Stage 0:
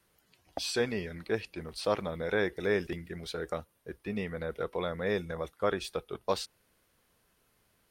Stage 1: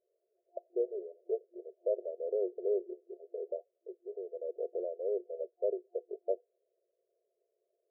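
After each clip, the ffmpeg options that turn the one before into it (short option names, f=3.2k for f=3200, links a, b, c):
-af "afftfilt=real='re*between(b*sr/4096,350,700)':imag='im*between(b*sr/4096,350,700)':win_size=4096:overlap=0.75,volume=-1.5dB"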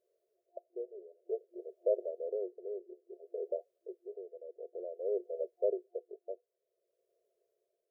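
-af "tremolo=f=0.55:d=0.74,volume=2dB"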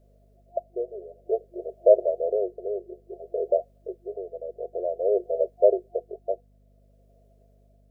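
-af "equalizer=f=680:w=3.4:g=11.5,aeval=exprs='val(0)+0.000447*(sin(2*PI*50*n/s)+sin(2*PI*2*50*n/s)/2+sin(2*PI*3*50*n/s)/3+sin(2*PI*4*50*n/s)/4+sin(2*PI*5*50*n/s)/5)':c=same,volume=9dB"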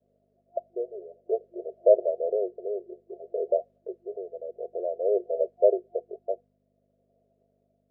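-af "aemphasis=mode=reproduction:type=riaa,agate=range=-33dB:threshold=-39dB:ratio=3:detection=peak,highpass=330,volume=-3.5dB"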